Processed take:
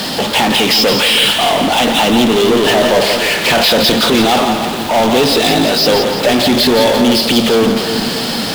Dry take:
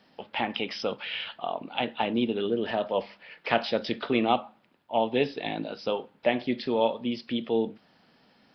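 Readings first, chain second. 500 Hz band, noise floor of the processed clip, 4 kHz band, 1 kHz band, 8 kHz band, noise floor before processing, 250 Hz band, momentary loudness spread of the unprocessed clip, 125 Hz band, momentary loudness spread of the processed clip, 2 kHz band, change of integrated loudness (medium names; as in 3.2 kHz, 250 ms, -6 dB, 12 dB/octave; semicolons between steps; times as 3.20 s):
+16.0 dB, -19 dBFS, +24.5 dB, +16.5 dB, no reading, -63 dBFS, +17.5 dB, 7 LU, +19.5 dB, 5 LU, +19.5 dB, +18.0 dB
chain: resonant high shelf 2.9 kHz +6 dB, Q 1.5; power-law waveshaper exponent 0.35; in parallel at +2.5 dB: peak limiter -16 dBFS, peak gain reduction 9 dB; on the sum: two-band feedback delay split 460 Hz, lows 313 ms, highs 170 ms, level -7 dB; trim -1 dB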